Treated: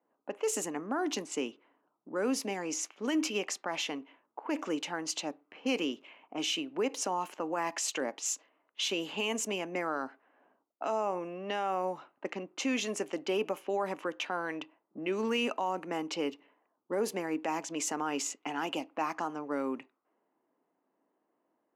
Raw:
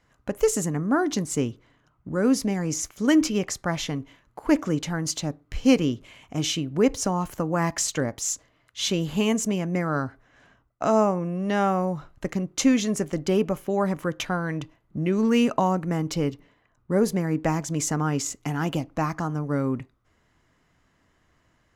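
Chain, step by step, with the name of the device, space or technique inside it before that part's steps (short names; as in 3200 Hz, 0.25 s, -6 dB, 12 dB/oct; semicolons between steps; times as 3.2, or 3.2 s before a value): laptop speaker (HPF 270 Hz 24 dB/oct; bell 870 Hz +5.5 dB 0.52 oct; bell 2700 Hz +9.5 dB 0.44 oct; limiter -17 dBFS, peak gain reduction 11 dB); HPF 130 Hz; low-pass opened by the level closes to 620 Hz, open at -24.5 dBFS; gain -5.5 dB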